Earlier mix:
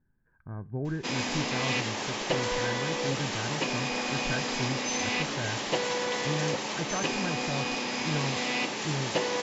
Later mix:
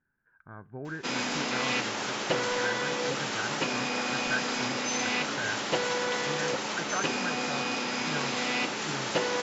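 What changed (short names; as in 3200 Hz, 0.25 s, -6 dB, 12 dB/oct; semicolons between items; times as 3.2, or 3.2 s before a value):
speech: add tilt +3.5 dB/oct; master: add bell 1400 Hz +9.5 dB 0.23 oct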